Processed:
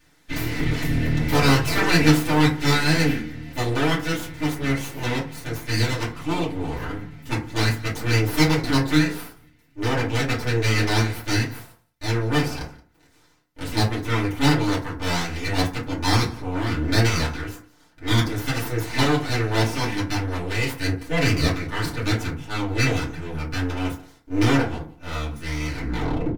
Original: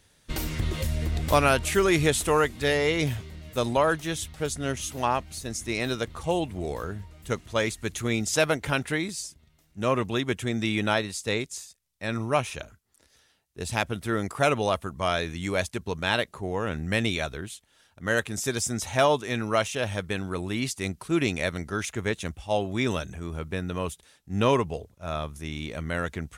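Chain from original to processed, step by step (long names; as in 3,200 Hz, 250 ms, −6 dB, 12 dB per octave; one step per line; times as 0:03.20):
turntable brake at the end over 0.65 s
graphic EQ with 10 bands 500 Hz −6 dB, 1,000 Hz −9 dB, 2,000 Hz +9 dB, 8,000 Hz −8 dB
full-wave rectification
single-tap delay 175 ms −22.5 dB
feedback delay network reverb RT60 0.38 s, low-frequency decay 1.25×, high-frequency decay 0.45×, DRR −8.5 dB
level −1.5 dB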